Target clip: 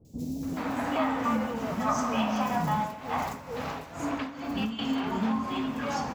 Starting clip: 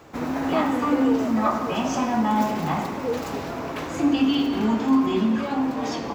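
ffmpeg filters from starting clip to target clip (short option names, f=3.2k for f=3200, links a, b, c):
-filter_complex "[0:a]acompressor=threshold=-21dB:ratio=6,equalizer=f=340:w=2.3:g=-9,acrossover=split=380|4800[a][b][c];[c]adelay=50[d];[b]adelay=430[e];[a][e][d]amix=inputs=3:normalize=0,asettb=1/sr,asplit=3[f][g][h];[f]atrim=end=2.754[i];[g]atrim=start=2.75:end=4.79,asetpts=PTS-STARTPTS,afade=t=in:d=0.004:c=qsin,afade=t=out:st=2.036:d=0.004:c=qsin,tremolo=f=2.2:d=0.74[j];[h]atrim=start=4.786[k];[i][j]acrossfade=d=0.004:c1=hsin:c2=qsin[l];[l][k]acrossfade=d=0.004:c1=qsin:c2=hsin"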